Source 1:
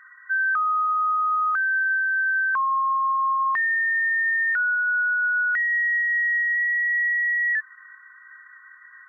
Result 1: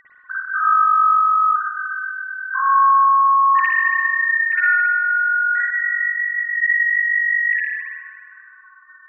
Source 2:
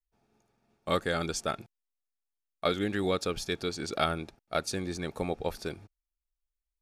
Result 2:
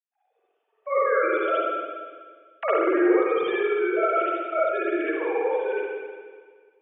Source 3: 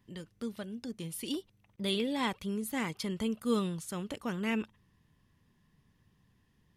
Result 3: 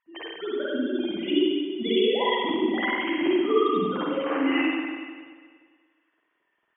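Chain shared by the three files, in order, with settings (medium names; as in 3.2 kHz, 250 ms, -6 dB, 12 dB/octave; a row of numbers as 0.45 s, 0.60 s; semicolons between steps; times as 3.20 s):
formants replaced by sine waves; spectral noise reduction 10 dB; compression 2:1, threshold -40 dBFS; spring tank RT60 1.7 s, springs 48/59 ms, chirp 65 ms, DRR -9 dB; trim +6.5 dB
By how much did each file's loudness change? +5.0 LU, +8.5 LU, +10.0 LU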